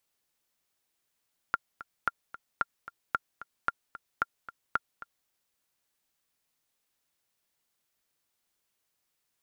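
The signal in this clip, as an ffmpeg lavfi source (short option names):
-f lavfi -i "aevalsrc='pow(10,(-12.5-16*gte(mod(t,2*60/224),60/224))/20)*sin(2*PI*1390*mod(t,60/224))*exp(-6.91*mod(t,60/224)/0.03)':d=3.75:s=44100"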